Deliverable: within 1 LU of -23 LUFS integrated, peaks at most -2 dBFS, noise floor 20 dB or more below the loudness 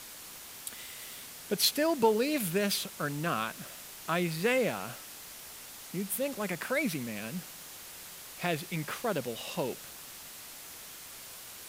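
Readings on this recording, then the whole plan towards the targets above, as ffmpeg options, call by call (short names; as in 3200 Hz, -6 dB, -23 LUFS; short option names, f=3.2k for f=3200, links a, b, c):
noise floor -47 dBFS; noise floor target -52 dBFS; loudness -32.0 LUFS; peak -11.5 dBFS; loudness target -23.0 LUFS
-> -af "afftdn=nr=6:nf=-47"
-af "volume=9dB"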